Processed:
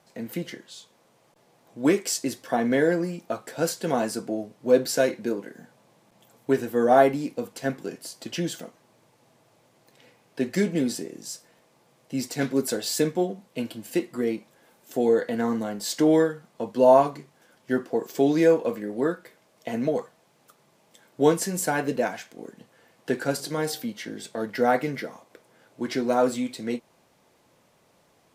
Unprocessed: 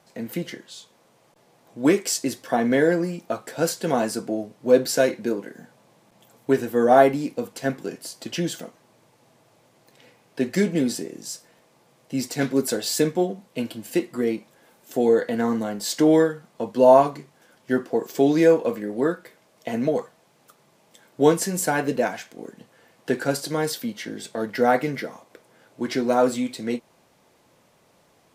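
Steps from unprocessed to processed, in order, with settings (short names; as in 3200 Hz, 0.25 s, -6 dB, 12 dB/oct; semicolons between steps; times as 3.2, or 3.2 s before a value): 23.33–23.84 de-hum 45.38 Hz, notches 19; gain -2.5 dB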